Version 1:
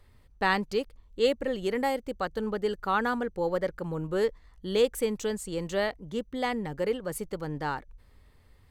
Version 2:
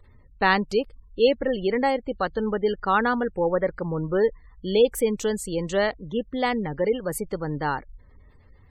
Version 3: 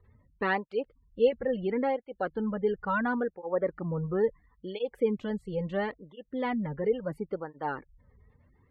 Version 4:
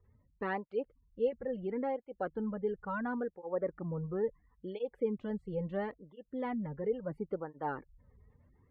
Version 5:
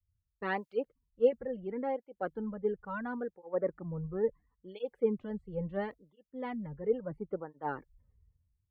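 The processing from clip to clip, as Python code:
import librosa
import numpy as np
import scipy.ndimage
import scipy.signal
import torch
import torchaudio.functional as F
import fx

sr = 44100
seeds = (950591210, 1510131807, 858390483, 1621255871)

y1 = fx.spec_gate(x, sr, threshold_db=-30, keep='strong')
y1 = F.gain(torch.from_numpy(y1), 5.5).numpy()
y2 = fx.air_absorb(y1, sr, metres=440.0)
y2 = fx.flanger_cancel(y2, sr, hz=0.73, depth_ms=3.6)
y2 = F.gain(torch.from_numpy(y2), -2.0).numpy()
y3 = fx.lowpass(y2, sr, hz=1300.0, slope=6)
y3 = fx.rider(y3, sr, range_db=3, speed_s=0.5)
y3 = F.gain(torch.from_numpy(y3), -5.0).numpy()
y4 = fx.band_widen(y3, sr, depth_pct=100)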